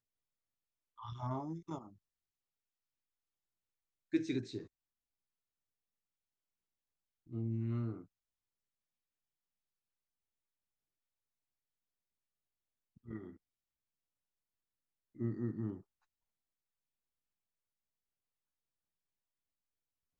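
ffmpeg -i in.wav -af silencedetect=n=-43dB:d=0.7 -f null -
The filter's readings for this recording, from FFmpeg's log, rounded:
silence_start: 0.00
silence_end: 1.03 | silence_duration: 1.03
silence_start: 1.81
silence_end: 4.13 | silence_duration: 2.32
silence_start: 4.63
silence_end: 7.33 | silence_duration: 2.70
silence_start: 8.01
silence_end: 13.08 | silence_duration: 5.08
silence_start: 13.29
silence_end: 15.20 | silence_duration: 1.91
silence_start: 15.77
silence_end: 20.19 | silence_duration: 4.42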